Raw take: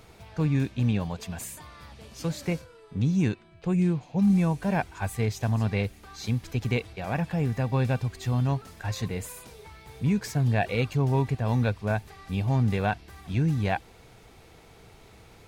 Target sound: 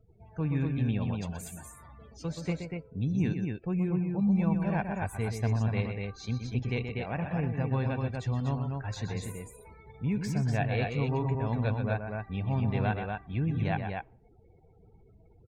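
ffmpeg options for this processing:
ffmpeg -i in.wav -af "aecho=1:1:125.4|242:0.447|0.631,afftdn=noise_reduction=35:noise_floor=-45,volume=-5.5dB" out.wav

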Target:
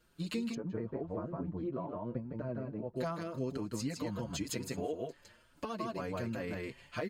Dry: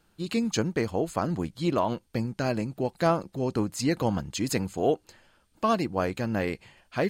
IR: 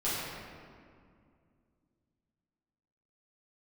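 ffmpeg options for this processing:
-filter_complex "[0:a]asuperstop=centerf=790:order=4:qfactor=6.6,aecho=1:1:159:0.668,acompressor=threshold=-31dB:ratio=10,asplit=3[link_01][link_02][link_03];[link_01]afade=type=out:start_time=0.53:duration=0.02[link_04];[link_02]lowpass=1000,afade=type=in:start_time=0.53:duration=0.02,afade=type=out:start_time=2.95:duration=0.02[link_05];[link_03]afade=type=in:start_time=2.95:duration=0.02[link_06];[link_04][link_05][link_06]amix=inputs=3:normalize=0,asplit=2[link_07][link_08];[link_08]adelay=5.9,afreqshift=2.4[link_09];[link_07][link_09]amix=inputs=2:normalize=1"

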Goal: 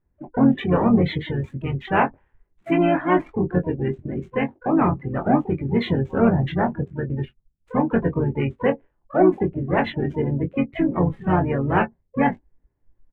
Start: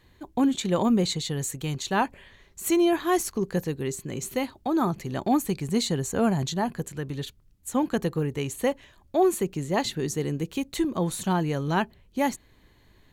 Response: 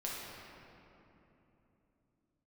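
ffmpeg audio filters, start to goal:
-filter_complex "[0:a]asplit=4[link_01][link_02][link_03][link_04];[link_02]asetrate=22050,aresample=44100,atempo=2,volume=-10dB[link_05];[link_03]asetrate=37084,aresample=44100,atempo=1.18921,volume=-5dB[link_06];[link_04]asetrate=88200,aresample=44100,atempo=0.5,volume=-14dB[link_07];[link_01][link_05][link_06][link_07]amix=inputs=4:normalize=0,asplit=2[link_08][link_09];[link_09]asoftclip=type=tanh:threshold=-21.5dB,volume=-6.5dB[link_10];[link_08][link_10]amix=inputs=2:normalize=0,adynamicsmooth=sensitivity=6:basefreq=780,highshelf=frequency=3500:width_type=q:width=1.5:gain=-12.5,asplit=2[link_11][link_12];[link_12]aecho=0:1:22|35:0.531|0.15[link_13];[link_11][link_13]amix=inputs=2:normalize=0,afftdn=noise_reduction=20:noise_floor=-31,adynamicequalizer=threshold=0.00447:dfrequency=5700:dqfactor=0.7:tfrequency=5700:tqfactor=0.7:attack=5:release=100:ratio=0.375:range=4:mode=cutabove:tftype=highshelf"

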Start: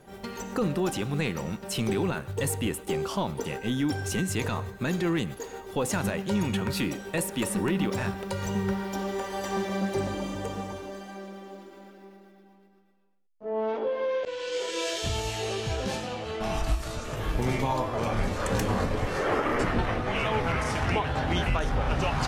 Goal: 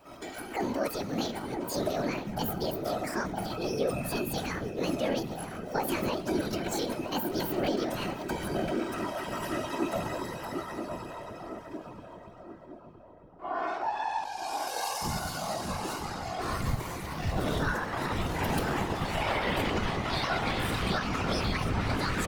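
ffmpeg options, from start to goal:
ffmpeg -i in.wav -filter_complex "[0:a]asetrate=72056,aresample=44100,atempo=0.612027,asplit=2[link_01][link_02];[link_02]adelay=963,lowpass=frequency=1000:poles=1,volume=-5dB,asplit=2[link_03][link_04];[link_04]adelay=963,lowpass=frequency=1000:poles=1,volume=0.54,asplit=2[link_05][link_06];[link_06]adelay=963,lowpass=frequency=1000:poles=1,volume=0.54,asplit=2[link_07][link_08];[link_08]adelay=963,lowpass=frequency=1000:poles=1,volume=0.54,asplit=2[link_09][link_10];[link_10]adelay=963,lowpass=frequency=1000:poles=1,volume=0.54,asplit=2[link_11][link_12];[link_12]adelay=963,lowpass=frequency=1000:poles=1,volume=0.54,asplit=2[link_13][link_14];[link_14]adelay=963,lowpass=frequency=1000:poles=1,volume=0.54[link_15];[link_01][link_03][link_05][link_07][link_09][link_11][link_13][link_15]amix=inputs=8:normalize=0,afftfilt=real='hypot(re,im)*cos(2*PI*random(0))':imag='hypot(re,im)*sin(2*PI*random(1))':win_size=512:overlap=0.75,volume=2.5dB" out.wav

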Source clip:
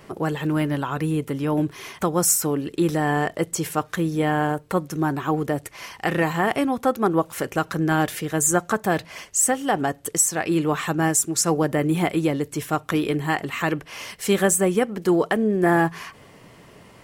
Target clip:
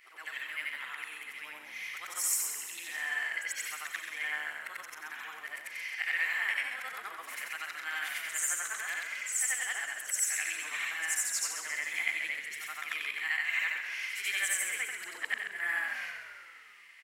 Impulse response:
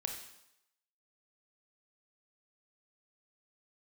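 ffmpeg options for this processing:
-filter_complex "[0:a]afftfilt=real='re':imag='-im':win_size=8192:overlap=0.75,highpass=frequency=2100:width_type=q:width=4.8,asplit=2[link_01][link_02];[link_02]asplit=8[link_03][link_04][link_05][link_06][link_07][link_08][link_09][link_10];[link_03]adelay=132,afreqshift=-63,volume=-8dB[link_11];[link_04]adelay=264,afreqshift=-126,volume=-12.4dB[link_12];[link_05]adelay=396,afreqshift=-189,volume=-16.9dB[link_13];[link_06]adelay=528,afreqshift=-252,volume=-21.3dB[link_14];[link_07]adelay=660,afreqshift=-315,volume=-25.7dB[link_15];[link_08]adelay=792,afreqshift=-378,volume=-30.2dB[link_16];[link_09]adelay=924,afreqshift=-441,volume=-34.6dB[link_17];[link_10]adelay=1056,afreqshift=-504,volume=-39.1dB[link_18];[link_11][link_12][link_13][link_14][link_15][link_16][link_17][link_18]amix=inputs=8:normalize=0[link_19];[link_01][link_19]amix=inputs=2:normalize=0,volume=-6dB"

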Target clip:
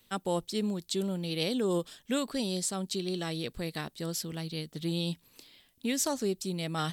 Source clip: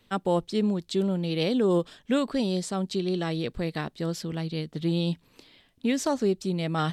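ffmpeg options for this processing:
ffmpeg -i in.wav -af "aemphasis=mode=production:type=75fm,volume=-5.5dB" out.wav

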